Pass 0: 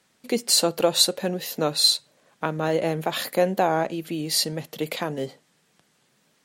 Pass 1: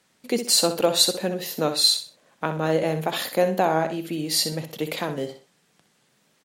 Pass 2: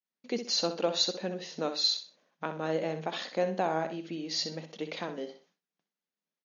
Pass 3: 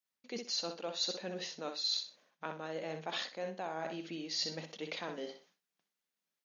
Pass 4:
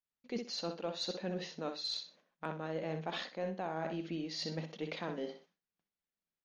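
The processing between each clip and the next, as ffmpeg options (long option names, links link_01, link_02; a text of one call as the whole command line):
ffmpeg -i in.wav -af "aecho=1:1:63|126|189:0.335|0.0938|0.0263" out.wav
ffmpeg -i in.wav -af "afftfilt=real='re*between(b*sr/4096,160,6800)':imag='im*between(b*sr/4096,160,6800)':win_size=4096:overlap=0.75,agate=range=-33dB:threshold=-52dB:ratio=3:detection=peak,volume=-8.5dB" out.wav
ffmpeg -i in.wav -af "areverse,acompressor=threshold=-36dB:ratio=6,areverse,tiltshelf=frequency=730:gain=-3.5" out.wav
ffmpeg -i in.wav -af "agate=range=-6dB:threshold=-59dB:ratio=16:detection=peak,aemphasis=mode=reproduction:type=bsi,aeval=exprs='0.0668*(cos(1*acos(clip(val(0)/0.0668,-1,1)))-cos(1*PI/2))+0.00188*(cos(6*acos(clip(val(0)/0.0668,-1,1)))-cos(6*PI/2))+0.000944*(cos(8*acos(clip(val(0)/0.0668,-1,1)))-cos(8*PI/2))':channel_layout=same" out.wav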